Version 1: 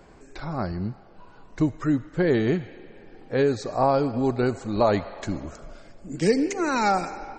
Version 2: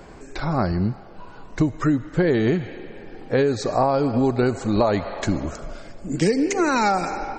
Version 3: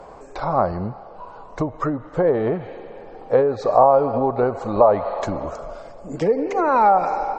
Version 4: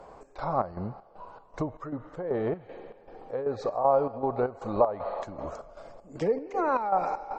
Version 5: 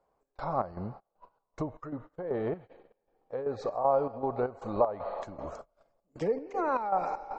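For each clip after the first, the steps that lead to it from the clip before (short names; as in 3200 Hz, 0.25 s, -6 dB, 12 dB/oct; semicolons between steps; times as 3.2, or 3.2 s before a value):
compressor 6:1, threshold -24 dBFS, peak gain reduction 9.5 dB; gain +8 dB
treble ducked by the level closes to 1600 Hz, closed at -14.5 dBFS; band shelf 750 Hz +12.5 dB; gain -5.5 dB
chopper 2.6 Hz, depth 65%, duty 60%; gain -7.5 dB
gate -41 dBFS, range -23 dB; gain -3 dB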